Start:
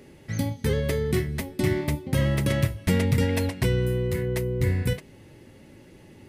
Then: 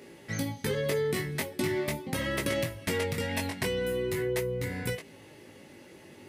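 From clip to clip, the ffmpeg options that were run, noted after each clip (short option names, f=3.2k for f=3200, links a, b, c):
-af "flanger=delay=17.5:depth=3.1:speed=0.42,acompressor=threshold=-27dB:ratio=6,highpass=f=370:p=1,volume=6dB"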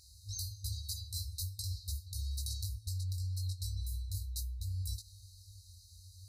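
-af "afftfilt=real='re*(1-between(b*sr/4096,100,3800))':imag='im*(1-between(b*sr/4096,100,3800))':win_size=4096:overlap=0.75,highshelf=f=3.1k:g=-12,areverse,acompressor=threshold=-47dB:ratio=12,areverse,volume=12.5dB"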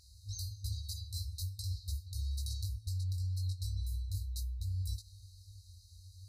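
-af "highshelf=f=4.5k:g=-8,volume=1.5dB"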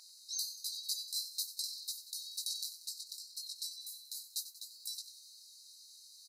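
-filter_complex "[0:a]highpass=f=750:w=0.5412,highpass=f=750:w=1.3066,asplit=2[a][b];[b]asplit=6[c][d][e][f][g][h];[c]adelay=93,afreqshift=70,volume=-13dB[i];[d]adelay=186,afreqshift=140,volume=-17.9dB[j];[e]adelay=279,afreqshift=210,volume=-22.8dB[k];[f]adelay=372,afreqshift=280,volume=-27.6dB[l];[g]adelay=465,afreqshift=350,volume=-32.5dB[m];[h]adelay=558,afreqshift=420,volume=-37.4dB[n];[i][j][k][l][m][n]amix=inputs=6:normalize=0[o];[a][o]amix=inputs=2:normalize=0,volume=8dB"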